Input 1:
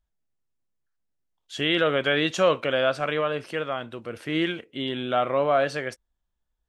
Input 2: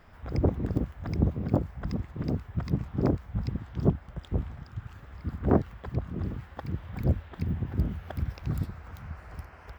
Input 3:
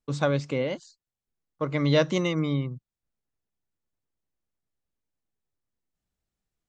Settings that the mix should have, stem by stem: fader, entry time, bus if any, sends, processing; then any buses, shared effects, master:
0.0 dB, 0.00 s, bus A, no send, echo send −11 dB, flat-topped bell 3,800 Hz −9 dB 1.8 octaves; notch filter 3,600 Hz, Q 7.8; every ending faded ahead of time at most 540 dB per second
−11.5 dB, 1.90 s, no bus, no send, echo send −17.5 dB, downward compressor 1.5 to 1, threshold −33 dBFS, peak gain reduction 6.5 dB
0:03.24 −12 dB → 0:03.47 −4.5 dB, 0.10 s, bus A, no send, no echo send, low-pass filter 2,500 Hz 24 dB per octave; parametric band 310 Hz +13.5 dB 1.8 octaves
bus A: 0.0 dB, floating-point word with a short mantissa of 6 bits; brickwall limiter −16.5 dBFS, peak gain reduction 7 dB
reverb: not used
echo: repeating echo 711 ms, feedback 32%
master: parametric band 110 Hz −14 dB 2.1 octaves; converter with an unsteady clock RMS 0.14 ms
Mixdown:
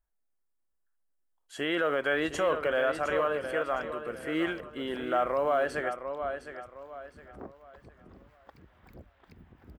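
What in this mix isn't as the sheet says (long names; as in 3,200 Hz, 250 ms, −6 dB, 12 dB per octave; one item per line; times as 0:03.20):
stem 3: muted
master: missing converter with an unsteady clock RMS 0.14 ms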